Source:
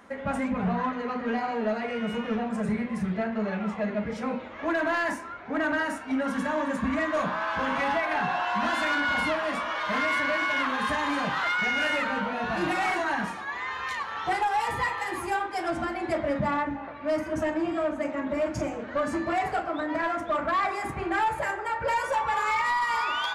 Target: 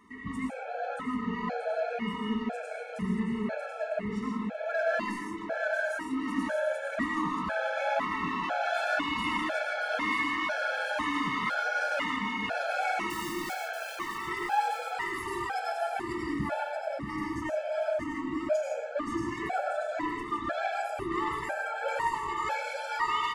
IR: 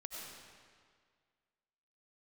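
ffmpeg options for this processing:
-filter_complex "[0:a]asettb=1/sr,asplit=3[s0][s1][s2];[s0]atrim=end=13.104[s3];[s1]atrim=start=13.1:end=13.55,asetpts=PTS-STARTPTS,afade=t=in:d=0.004:c=qsin,afade=t=out:st=0.446:d=0.004:c=qsin,aeval=exprs='(mod(39.8*val(0)+1,2)-1)/39.8':c=same[s4];[s2]atrim=start=13.546[s5];[s3][s4]acrossfade=d=0.004:c1=hsin:c2=qsin[s6];[s6][s5]acrossfade=d=0.004:c1=qsin:c2=hsin,aecho=1:1:632|1264|1896|2528|3160:0.501|0.226|0.101|0.0457|0.0206[s7];[1:a]atrim=start_sample=2205,afade=t=out:st=0.22:d=0.01,atrim=end_sample=10143[s8];[s7][s8]afir=irnorm=-1:irlink=0,afftfilt=real='re*gt(sin(2*PI*1*pts/sr)*(1-2*mod(floor(b*sr/1024/440),2)),0)':imag='im*gt(sin(2*PI*1*pts/sr)*(1-2*mod(floor(b*sr/1024/440),2)),0)':win_size=1024:overlap=0.75,volume=1.26"

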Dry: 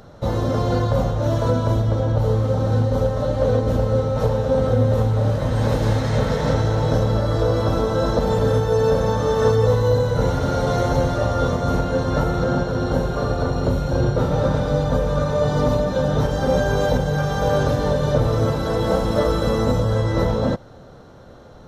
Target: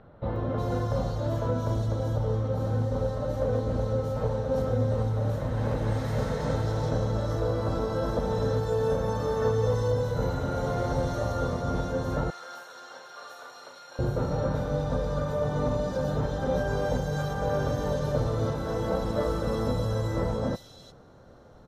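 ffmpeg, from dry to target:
-filter_complex "[0:a]asettb=1/sr,asplit=3[s0][s1][s2];[s0]atrim=end=12.304[s3];[s1]atrim=start=12.3:end=13.99,asetpts=PTS-STARTPTS,afade=t=in:d=0.004:c=qsin,afade=t=out:st=1.686:d=0.004:c=qsin,highpass=1400[s4];[s2]atrim=start=13.986[s5];[s3][s4]acrossfade=d=0.004:c1=hsin:c2=qsin[s6];[s6][s5]acrossfade=d=0.004:c1=qsin:c2=hsin,acrossover=split=3100[s7][s8];[s8]adelay=360[s9];[s7][s9]amix=inputs=2:normalize=0,volume=0.376"

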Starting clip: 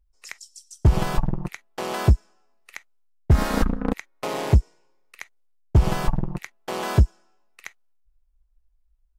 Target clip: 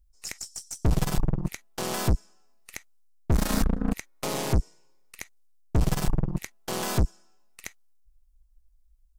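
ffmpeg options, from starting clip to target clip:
-af "bass=f=250:g=7,treble=f=4000:g=11,aeval=exprs='(tanh(8.91*val(0)+0.65)-tanh(0.65))/8.91':c=same"

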